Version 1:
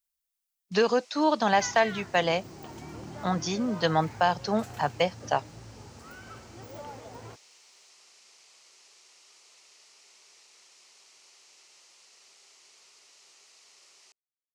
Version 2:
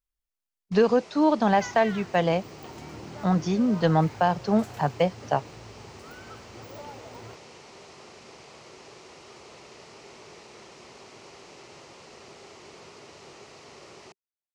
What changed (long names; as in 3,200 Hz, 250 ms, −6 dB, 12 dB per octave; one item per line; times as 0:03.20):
speech: add spectral tilt −3 dB per octave
first sound: remove first difference